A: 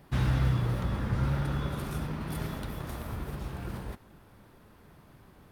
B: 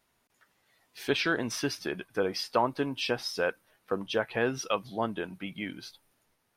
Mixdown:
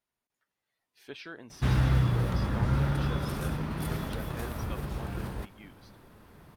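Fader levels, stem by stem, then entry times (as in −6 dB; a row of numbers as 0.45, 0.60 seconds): +2.0, −16.0 decibels; 1.50, 0.00 seconds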